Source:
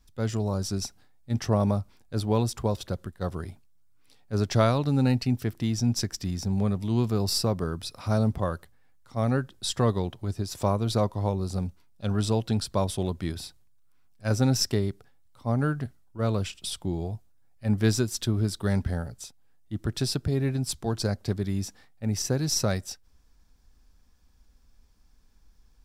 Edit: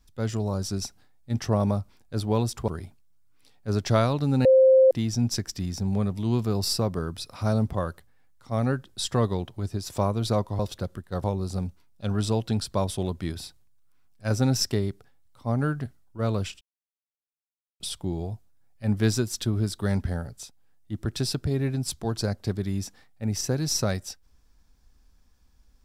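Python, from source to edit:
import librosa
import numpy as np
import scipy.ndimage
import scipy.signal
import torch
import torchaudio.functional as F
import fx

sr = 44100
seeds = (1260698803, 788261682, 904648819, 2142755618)

y = fx.edit(x, sr, fx.move(start_s=2.68, length_s=0.65, to_s=11.24),
    fx.bleep(start_s=5.1, length_s=0.46, hz=525.0, db=-12.5),
    fx.insert_silence(at_s=16.61, length_s=1.19), tone=tone)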